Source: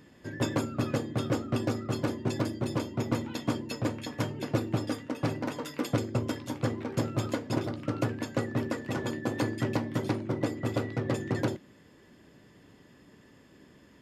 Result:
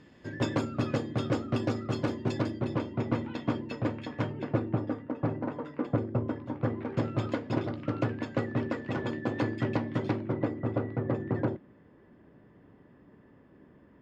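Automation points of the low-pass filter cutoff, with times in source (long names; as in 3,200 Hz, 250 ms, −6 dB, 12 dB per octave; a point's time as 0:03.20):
0:02.29 5,300 Hz
0:02.71 2,800 Hz
0:04.19 2,800 Hz
0:04.91 1,300 Hz
0:06.49 1,300 Hz
0:07.08 3,300 Hz
0:10.12 3,300 Hz
0:10.63 1,400 Hz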